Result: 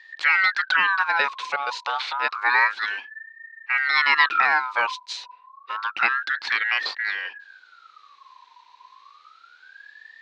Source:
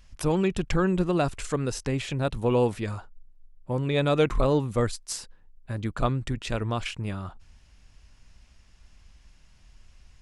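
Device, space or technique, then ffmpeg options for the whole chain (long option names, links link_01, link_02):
voice changer toy: -af "aeval=exprs='val(0)*sin(2*PI*1400*n/s+1400*0.3/0.29*sin(2*PI*0.29*n/s))':channel_layout=same,highpass=580,equalizer=frequency=640:width_type=q:width=4:gain=-9,equalizer=frequency=1200:width_type=q:width=4:gain=-3,equalizer=frequency=2400:width_type=q:width=4:gain=5,equalizer=frequency=4000:width_type=q:width=4:gain=7,lowpass=frequency=4900:width=0.5412,lowpass=frequency=4900:width=1.3066,volume=6.5dB"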